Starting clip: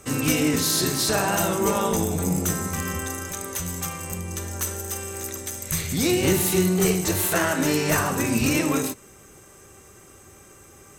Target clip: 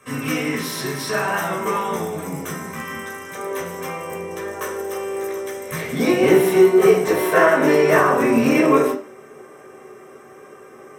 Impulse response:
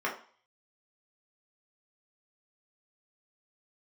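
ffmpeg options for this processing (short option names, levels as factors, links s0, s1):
-filter_complex "[0:a]asetnsamples=n=441:p=0,asendcmd='3.35 equalizer g 6.5',equalizer=f=470:t=o:w=1.8:g=-6[s0];[1:a]atrim=start_sample=2205[s1];[s0][s1]afir=irnorm=-1:irlink=0,volume=0.668"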